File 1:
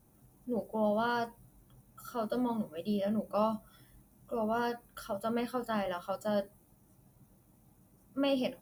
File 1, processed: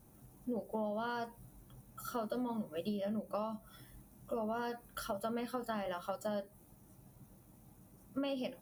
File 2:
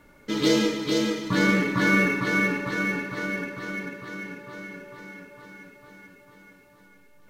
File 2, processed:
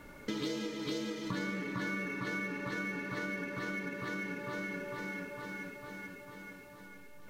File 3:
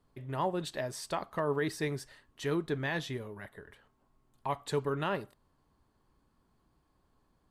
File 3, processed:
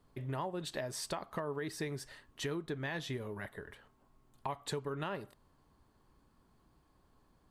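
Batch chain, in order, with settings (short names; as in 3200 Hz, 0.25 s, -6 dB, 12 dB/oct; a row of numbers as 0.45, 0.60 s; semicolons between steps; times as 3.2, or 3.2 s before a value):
compressor 8:1, threshold -38 dBFS; gain +3 dB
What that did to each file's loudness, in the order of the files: -5.5, -14.0, -5.0 LU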